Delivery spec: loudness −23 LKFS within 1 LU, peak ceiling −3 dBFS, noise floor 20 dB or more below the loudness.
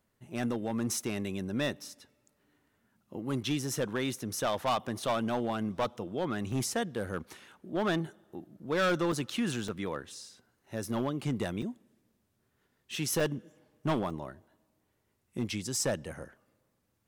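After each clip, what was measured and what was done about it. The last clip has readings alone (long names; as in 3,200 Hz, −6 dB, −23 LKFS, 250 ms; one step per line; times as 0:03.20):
share of clipped samples 1.1%; peaks flattened at −24.0 dBFS; number of dropouts 6; longest dropout 3.3 ms; integrated loudness −33.5 LKFS; sample peak −24.0 dBFS; target loudness −23.0 LKFS
→ clipped peaks rebuilt −24 dBFS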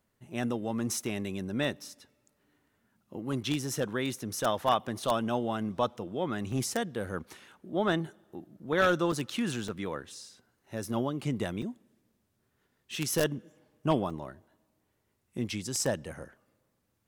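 share of clipped samples 0.0%; number of dropouts 6; longest dropout 3.3 ms
→ repair the gap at 0:06.52/0:09.12/0:09.68/0:11.62/0:13.20/0:14.10, 3.3 ms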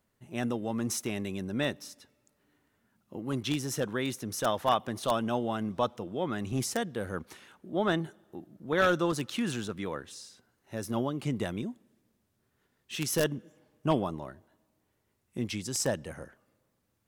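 number of dropouts 0; integrated loudness −32.0 LKFS; sample peak −15.0 dBFS; target loudness −23.0 LKFS
→ level +9 dB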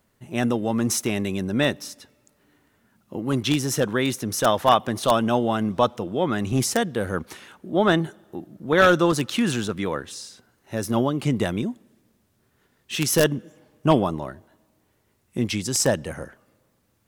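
integrated loudness −23.0 LKFS; sample peak −6.0 dBFS; background noise floor −67 dBFS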